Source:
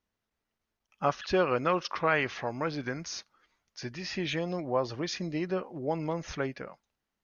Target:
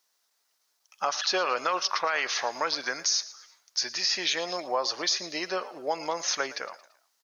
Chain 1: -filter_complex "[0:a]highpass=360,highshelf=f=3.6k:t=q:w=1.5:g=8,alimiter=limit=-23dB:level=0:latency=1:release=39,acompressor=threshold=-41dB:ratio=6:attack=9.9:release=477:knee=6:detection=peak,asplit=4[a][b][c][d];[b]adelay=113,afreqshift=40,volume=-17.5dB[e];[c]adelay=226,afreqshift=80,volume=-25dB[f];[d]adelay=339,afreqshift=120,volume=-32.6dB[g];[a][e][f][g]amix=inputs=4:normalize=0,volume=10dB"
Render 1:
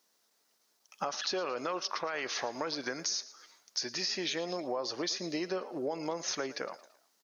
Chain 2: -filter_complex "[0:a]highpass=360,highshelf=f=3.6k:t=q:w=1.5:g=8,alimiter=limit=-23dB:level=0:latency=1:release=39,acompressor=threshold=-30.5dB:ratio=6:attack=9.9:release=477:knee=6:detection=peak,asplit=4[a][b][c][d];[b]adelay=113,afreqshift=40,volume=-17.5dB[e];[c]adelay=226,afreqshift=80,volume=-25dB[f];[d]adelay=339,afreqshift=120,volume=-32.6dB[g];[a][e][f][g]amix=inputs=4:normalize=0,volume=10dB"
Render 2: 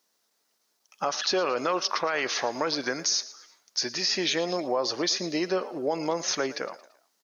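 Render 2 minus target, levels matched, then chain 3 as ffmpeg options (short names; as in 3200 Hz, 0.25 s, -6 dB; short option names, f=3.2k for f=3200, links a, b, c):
500 Hz band +3.5 dB
-filter_complex "[0:a]highpass=770,highshelf=f=3.6k:t=q:w=1.5:g=8,alimiter=limit=-23dB:level=0:latency=1:release=39,acompressor=threshold=-30.5dB:ratio=6:attack=9.9:release=477:knee=6:detection=peak,asplit=4[a][b][c][d];[b]adelay=113,afreqshift=40,volume=-17.5dB[e];[c]adelay=226,afreqshift=80,volume=-25dB[f];[d]adelay=339,afreqshift=120,volume=-32.6dB[g];[a][e][f][g]amix=inputs=4:normalize=0,volume=10dB"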